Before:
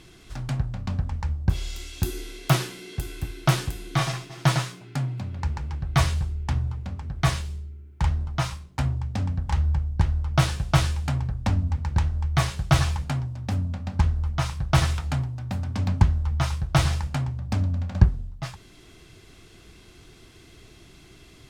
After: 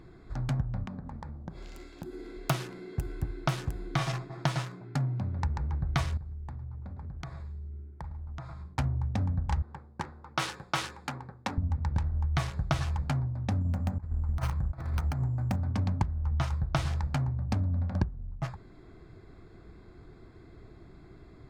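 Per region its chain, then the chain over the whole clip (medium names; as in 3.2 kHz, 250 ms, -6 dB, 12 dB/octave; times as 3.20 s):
0.84–2.37 s: resonant low shelf 130 Hz -10.5 dB, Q 1.5 + compression 10:1, threshold -35 dBFS
6.17–8.74 s: delay 106 ms -13.5 dB + compression 8:1, threshold -37 dBFS
9.62–11.58 s: high-pass 340 Hz + peaking EQ 650 Hz -12 dB 0.22 oct
13.61–15.56 s: compressor with a negative ratio -27 dBFS, ratio -0.5 + careless resampling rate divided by 6×, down filtered, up hold
whole clip: local Wiener filter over 15 samples; treble shelf 8.9 kHz -5.5 dB; compression 8:1, threshold -25 dBFS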